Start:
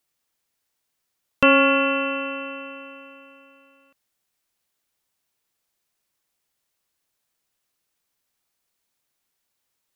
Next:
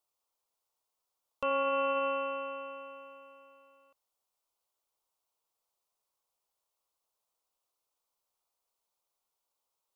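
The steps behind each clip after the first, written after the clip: bell 1700 Hz -9.5 dB 0.31 oct; limiter -16 dBFS, peak gain reduction 11.5 dB; ten-band EQ 125 Hz -8 dB, 250 Hz -7 dB, 500 Hz +5 dB, 1000 Hz +9 dB, 2000 Hz -6 dB; gain -8.5 dB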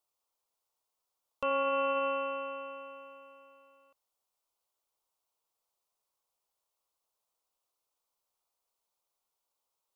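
nothing audible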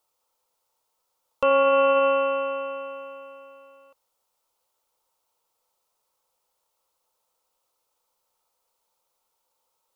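small resonant body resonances 510/900/1300 Hz, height 8 dB; gain +8.5 dB

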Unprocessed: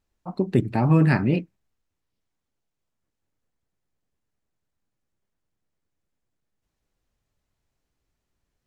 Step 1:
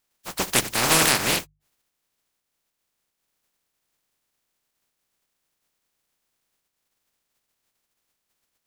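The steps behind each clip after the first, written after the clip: spectral contrast lowered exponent 0.15; notches 50/100/150 Hz; spectral gate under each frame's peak -15 dB strong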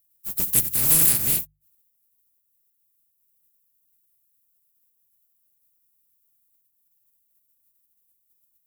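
EQ curve 130 Hz 0 dB, 890 Hz -18 dB, 5700 Hz -9 dB, 14000 Hz +13 dB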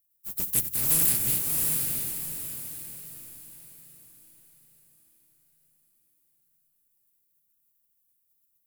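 diffused feedback echo 0.67 s, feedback 40%, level -3 dB; gain -5.5 dB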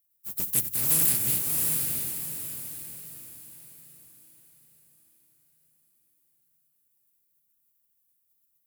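HPF 49 Hz

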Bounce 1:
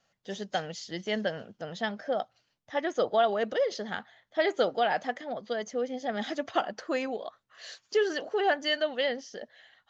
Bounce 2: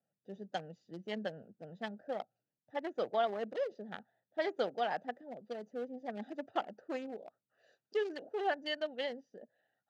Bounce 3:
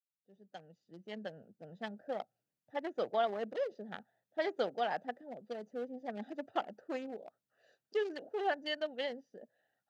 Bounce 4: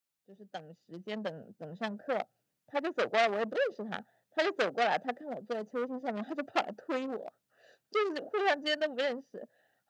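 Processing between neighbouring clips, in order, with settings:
Wiener smoothing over 41 samples; HPF 120 Hz 24 dB/oct; bell 820 Hz +2.5 dB 0.33 oct; gain -7.5 dB
opening faded in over 2.07 s
core saturation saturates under 2300 Hz; gain +8 dB

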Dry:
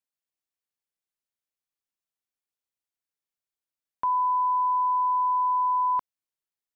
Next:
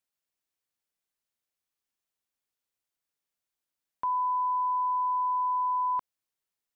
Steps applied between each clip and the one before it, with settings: limiter -27.5 dBFS, peak gain reduction 7 dB; gain +3 dB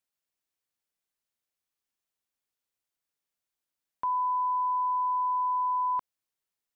nothing audible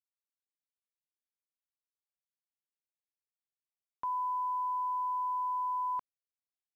sample gate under -50 dBFS; gain -5.5 dB

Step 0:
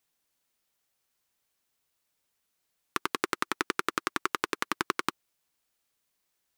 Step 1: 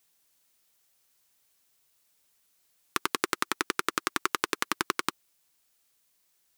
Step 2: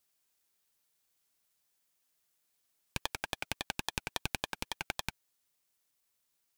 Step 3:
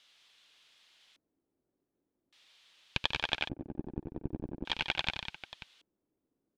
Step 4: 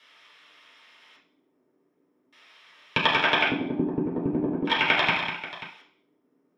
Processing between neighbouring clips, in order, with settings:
in parallel at +2.5 dB: limiter -14 dBFS, peak gain reduction 9 dB; on the sum: high shelf 3700 Hz +6.5 dB; vocal rider; gain -3.5 dB
ring modulator with a swept carrier 1500 Hz, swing 40%, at 3.6 Hz; gain -5 dB
added noise blue -59 dBFS; tapped delay 79/142/198/536 ms -9/-11.5/-8/-14.5 dB; LFO low-pass square 0.43 Hz 320–3400 Hz; gain +1 dB
reverb RT60 0.45 s, pre-delay 3 ms, DRR -6 dB

